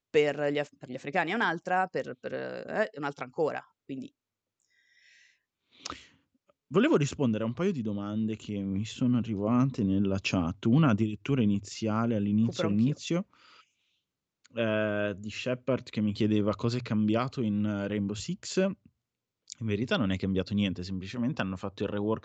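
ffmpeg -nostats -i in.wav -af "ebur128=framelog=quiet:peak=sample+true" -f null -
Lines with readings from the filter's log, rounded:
Integrated loudness:
  I:         -29.7 LUFS
  Threshold: -40.5 LUFS
Loudness range:
  LRA:         8.4 LU
  Threshold: -50.7 LUFS
  LRA low:   -36.2 LUFS
  LRA high:  -27.8 LUFS
Sample peak:
  Peak:      -11.8 dBFS
True peak:
  Peak:      -11.7 dBFS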